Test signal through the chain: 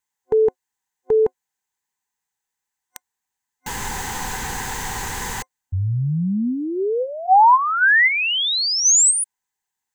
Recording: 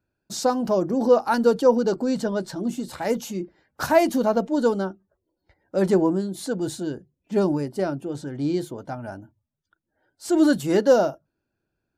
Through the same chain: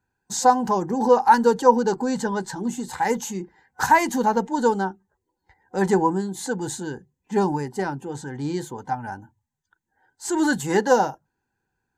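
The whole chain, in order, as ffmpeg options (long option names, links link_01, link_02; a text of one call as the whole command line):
ffmpeg -i in.wav -af "superequalizer=6b=0.631:8b=0.355:9b=3.16:11b=2.24:15b=2.24" out.wav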